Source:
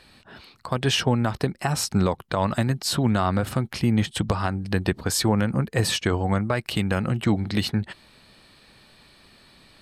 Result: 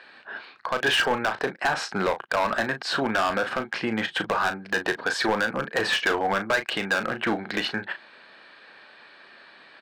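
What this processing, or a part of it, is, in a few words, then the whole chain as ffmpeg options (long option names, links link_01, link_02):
megaphone: -filter_complex "[0:a]highpass=470,lowpass=2800,equalizer=frequency=1600:width_type=o:width=0.24:gain=10,asoftclip=type=hard:threshold=-23.5dB,asplit=2[link_01][link_02];[link_02]adelay=36,volume=-9.5dB[link_03];[link_01][link_03]amix=inputs=2:normalize=0,volume=5.5dB"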